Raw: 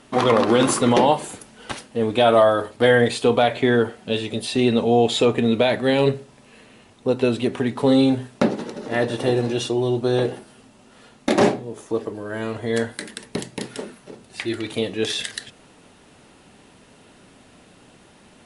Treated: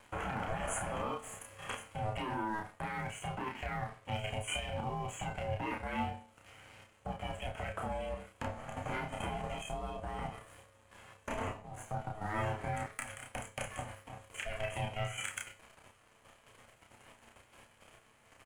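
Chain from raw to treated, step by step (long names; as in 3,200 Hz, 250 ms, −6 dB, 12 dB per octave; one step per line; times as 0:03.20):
meter weighting curve A
brick-wall band-stop 3,000–6,300 Hz
low-shelf EQ 150 Hz +9 dB
downward compressor 4 to 1, threshold −33 dBFS, peak gain reduction 17 dB
leveller curve on the samples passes 2
output level in coarse steps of 10 dB
tuned comb filter 110 Hz, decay 0.37 s, harmonics all, mix 70%
ring modulation 320 Hz
pitch vibrato 0.86 Hz 9.2 cents
double-tracking delay 31 ms −3 dB
level +2 dB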